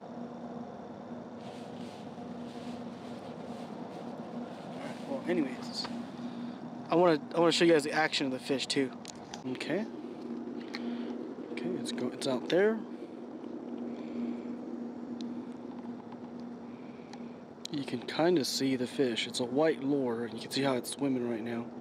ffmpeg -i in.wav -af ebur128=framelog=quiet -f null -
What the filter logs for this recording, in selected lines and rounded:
Integrated loudness:
  I:         -33.7 LUFS
  Threshold: -44.1 LUFS
Loudness range:
  LRA:        13.3 LU
  Threshold: -54.0 LUFS
  LRA low:   -42.7 LUFS
  LRA high:  -29.5 LUFS